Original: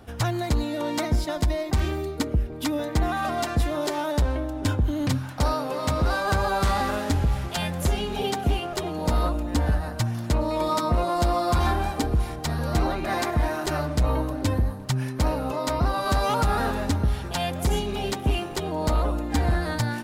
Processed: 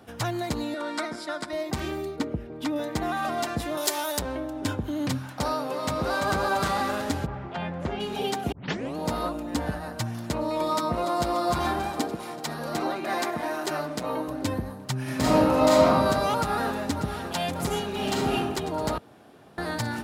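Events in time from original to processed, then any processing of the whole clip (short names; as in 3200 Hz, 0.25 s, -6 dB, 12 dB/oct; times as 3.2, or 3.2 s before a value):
0.74–1.53 speaker cabinet 320–9900 Hz, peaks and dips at 480 Hz -6 dB, 810 Hz -5 dB, 1400 Hz +9 dB, 2900 Hz -5 dB, 6400 Hz -7 dB
2.16–2.76 LPF 3000 Hz 6 dB/oct
3.77–4.19 RIAA curve recording
5.67–6.33 echo throw 0.34 s, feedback 50%, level -5 dB
7.25–7.99 LPF 1400 Hz -> 2500 Hz
8.52 tape start 0.44 s
10.74–11.29 echo throw 0.29 s, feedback 75%, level -11 dB
12.01–14.28 HPF 200 Hz
15.02–15.85 reverb throw, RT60 1.5 s, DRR -8 dB
16.37–17.22 echo throw 0.59 s, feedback 85%, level -9 dB
17.9–18.34 reverb throw, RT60 1.1 s, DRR -1.5 dB
18.98–19.58 room tone
whole clip: HPF 140 Hz 12 dB/oct; gain -1.5 dB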